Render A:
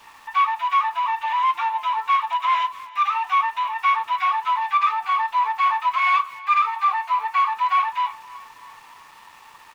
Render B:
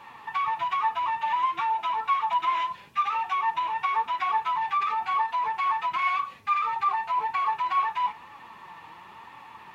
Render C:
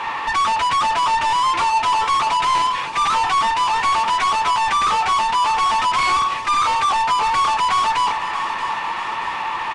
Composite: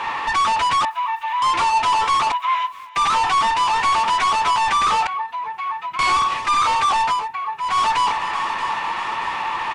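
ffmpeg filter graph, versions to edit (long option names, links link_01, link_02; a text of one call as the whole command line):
ffmpeg -i take0.wav -i take1.wav -i take2.wav -filter_complex "[0:a]asplit=2[link_01][link_02];[1:a]asplit=2[link_03][link_04];[2:a]asplit=5[link_05][link_06][link_07][link_08][link_09];[link_05]atrim=end=0.852[link_10];[link_01]atrim=start=0.848:end=1.422[link_11];[link_06]atrim=start=1.418:end=2.322[link_12];[link_02]atrim=start=2.318:end=2.962[link_13];[link_07]atrim=start=2.958:end=5.072[link_14];[link_03]atrim=start=5.068:end=5.992[link_15];[link_08]atrim=start=5.988:end=7.29[link_16];[link_04]atrim=start=7.05:end=7.81[link_17];[link_09]atrim=start=7.57[link_18];[link_10][link_11]acrossfade=duration=0.004:curve1=hsin:curve2=hsin[link_19];[link_19][link_12]acrossfade=duration=0.004:curve1=hsin:curve2=hsin[link_20];[link_20][link_13]acrossfade=duration=0.004:curve1=hsin:curve2=hsin[link_21];[link_21][link_14]acrossfade=duration=0.004:curve1=hsin:curve2=hsin[link_22];[link_22][link_15]acrossfade=duration=0.004:curve1=hsin:curve2=hsin[link_23];[link_23][link_16]acrossfade=duration=0.004:curve1=hsin:curve2=hsin[link_24];[link_24][link_17]acrossfade=duration=0.24:curve1=tri:curve2=tri[link_25];[link_25][link_18]acrossfade=duration=0.24:curve1=tri:curve2=tri" out.wav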